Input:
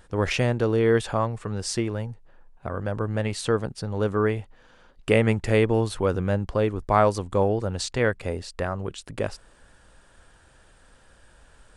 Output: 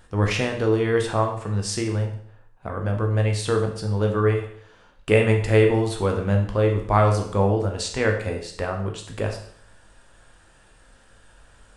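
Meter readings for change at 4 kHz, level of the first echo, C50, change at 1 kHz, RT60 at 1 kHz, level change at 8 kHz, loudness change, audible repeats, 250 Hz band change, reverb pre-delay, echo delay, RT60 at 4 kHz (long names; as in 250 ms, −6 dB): +2.0 dB, no echo audible, 7.5 dB, +1.5 dB, 0.60 s, +2.0 dB, +2.5 dB, no echo audible, +1.0 dB, 9 ms, no echo audible, 0.60 s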